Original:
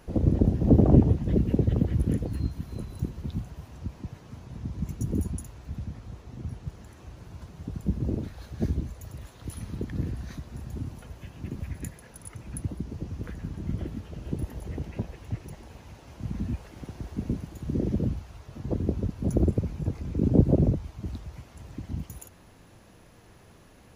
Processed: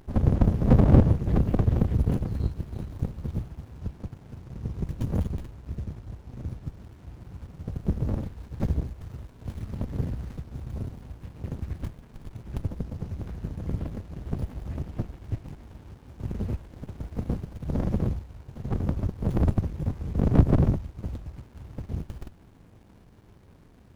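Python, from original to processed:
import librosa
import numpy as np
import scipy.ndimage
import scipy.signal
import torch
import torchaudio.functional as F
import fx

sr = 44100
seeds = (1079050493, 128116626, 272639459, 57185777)

y = fx.high_shelf(x, sr, hz=12000.0, db=11.0)
y = fx.running_max(y, sr, window=65)
y = F.gain(torch.from_numpy(y), 2.0).numpy()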